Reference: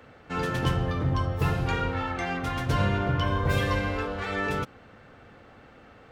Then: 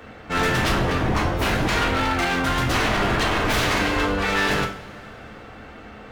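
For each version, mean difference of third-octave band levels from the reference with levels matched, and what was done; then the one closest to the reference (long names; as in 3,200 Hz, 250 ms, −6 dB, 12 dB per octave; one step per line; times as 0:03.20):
6.5 dB: wave folding −26.5 dBFS
notch filter 370 Hz, Q 12
coupled-rooms reverb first 0.38 s, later 3.2 s, from −22 dB, DRR 1 dB
level +8.5 dB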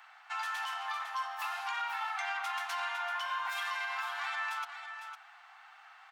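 17.0 dB: Butterworth high-pass 750 Hz 72 dB per octave
brickwall limiter −28 dBFS, peak gain reduction 9 dB
single-tap delay 505 ms −8.5 dB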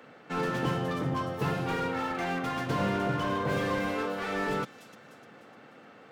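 4.0 dB: high-pass filter 150 Hz 24 dB per octave
on a send: delay with a high-pass on its return 301 ms, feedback 45%, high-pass 5,100 Hz, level −8.5 dB
on the sum: slew-rate limiting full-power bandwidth 40 Hz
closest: third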